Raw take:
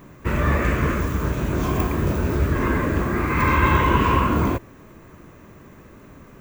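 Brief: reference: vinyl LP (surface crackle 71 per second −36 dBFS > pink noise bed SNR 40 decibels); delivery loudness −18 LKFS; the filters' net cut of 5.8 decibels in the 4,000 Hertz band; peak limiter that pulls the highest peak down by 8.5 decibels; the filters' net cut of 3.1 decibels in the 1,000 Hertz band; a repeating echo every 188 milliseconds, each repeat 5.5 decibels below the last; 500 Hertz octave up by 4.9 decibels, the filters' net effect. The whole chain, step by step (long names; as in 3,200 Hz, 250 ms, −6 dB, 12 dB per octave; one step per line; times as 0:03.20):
parametric band 500 Hz +7.5 dB
parametric band 1,000 Hz −4.5 dB
parametric band 4,000 Hz −8.5 dB
brickwall limiter −13 dBFS
repeating echo 188 ms, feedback 53%, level −5.5 dB
surface crackle 71 per second −36 dBFS
pink noise bed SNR 40 dB
level +3.5 dB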